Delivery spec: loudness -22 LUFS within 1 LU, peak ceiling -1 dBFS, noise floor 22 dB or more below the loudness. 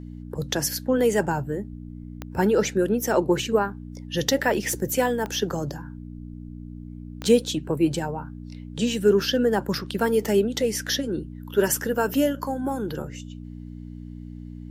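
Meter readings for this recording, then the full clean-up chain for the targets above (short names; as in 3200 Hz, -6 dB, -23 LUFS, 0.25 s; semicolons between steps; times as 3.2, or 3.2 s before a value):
clicks 4; hum 60 Hz; harmonics up to 300 Hz; hum level -35 dBFS; loudness -24.5 LUFS; peak -6.0 dBFS; loudness target -22.0 LUFS
-> de-click; de-hum 60 Hz, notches 5; gain +2.5 dB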